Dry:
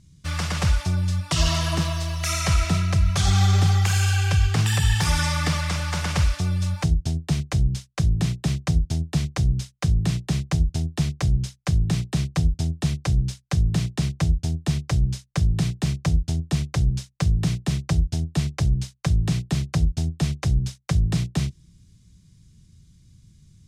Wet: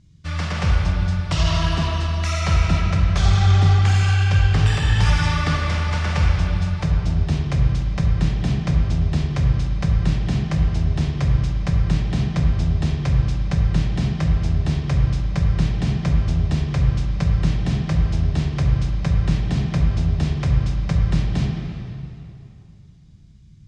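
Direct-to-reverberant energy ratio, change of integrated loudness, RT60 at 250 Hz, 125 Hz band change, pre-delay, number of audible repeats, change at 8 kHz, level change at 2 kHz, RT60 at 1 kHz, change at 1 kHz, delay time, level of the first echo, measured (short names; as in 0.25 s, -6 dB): -0.5 dB, +3.0 dB, 2.8 s, +3.5 dB, 8 ms, none, -7.0 dB, +2.0 dB, 2.7 s, +3.0 dB, none, none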